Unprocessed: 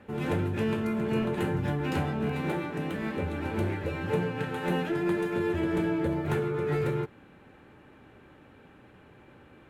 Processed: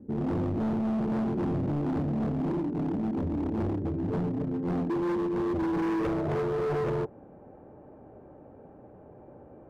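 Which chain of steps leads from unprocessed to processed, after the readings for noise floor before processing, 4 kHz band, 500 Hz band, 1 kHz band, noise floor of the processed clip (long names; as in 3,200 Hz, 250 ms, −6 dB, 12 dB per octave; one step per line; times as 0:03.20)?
−55 dBFS, can't be measured, −1.0 dB, −1.0 dB, −51 dBFS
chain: low-pass filter sweep 290 Hz → 660 Hz, 0:05.76–0:06.26
hard clipping −28.5 dBFS, distortion −8 dB
level +2 dB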